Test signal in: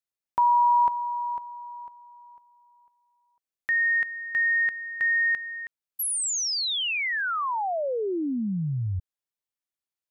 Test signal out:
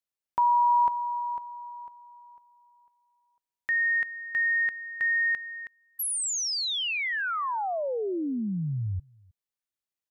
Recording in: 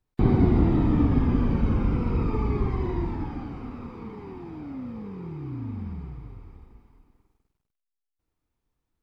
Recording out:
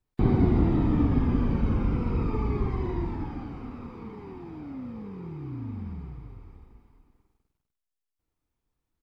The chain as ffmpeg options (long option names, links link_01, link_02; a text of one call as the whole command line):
ffmpeg -i in.wav -filter_complex "[0:a]asplit=2[link_01][link_02];[link_02]adelay=314.9,volume=-27dB,highshelf=frequency=4000:gain=-7.08[link_03];[link_01][link_03]amix=inputs=2:normalize=0,volume=-2dB" out.wav